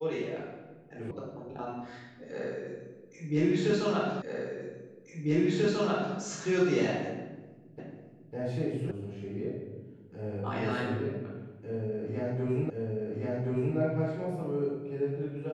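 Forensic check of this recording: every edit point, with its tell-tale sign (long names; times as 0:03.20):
0:01.11: cut off before it has died away
0:04.22: the same again, the last 1.94 s
0:07.79: the same again, the last 0.55 s
0:08.91: cut off before it has died away
0:12.70: the same again, the last 1.07 s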